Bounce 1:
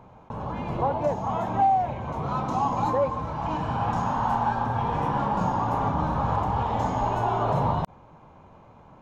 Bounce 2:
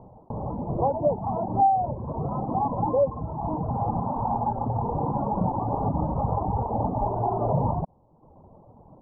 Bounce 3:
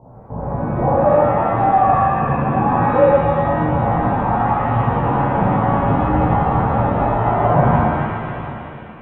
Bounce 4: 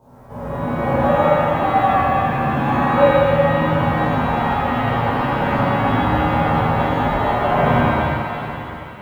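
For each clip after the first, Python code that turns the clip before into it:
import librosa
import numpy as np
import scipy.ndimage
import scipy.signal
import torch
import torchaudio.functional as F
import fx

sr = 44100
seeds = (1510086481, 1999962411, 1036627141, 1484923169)

y1 = fx.dereverb_blind(x, sr, rt60_s=0.89)
y1 = scipy.signal.sosfilt(scipy.signal.cheby2(4, 40, 1700.0, 'lowpass', fs=sr, output='sos'), y1)
y1 = y1 * 10.0 ** (3.5 / 20.0)
y2 = y1 + 10.0 ** (-16.5 / 20.0) * np.pad(y1, (int(738 * sr / 1000.0), 0))[:len(y1)]
y2 = fx.rev_shimmer(y2, sr, seeds[0], rt60_s=2.0, semitones=7, shimmer_db=-8, drr_db=-9.5)
y2 = y2 * 10.0 ** (-1.0 / 20.0)
y3 = fx.envelope_flatten(y2, sr, power=0.6)
y3 = fx.rev_plate(y3, sr, seeds[1], rt60_s=2.0, hf_ratio=0.75, predelay_ms=0, drr_db=-5.0)
y3 = y3 * 10.0 ** (-8.0 / 20.0)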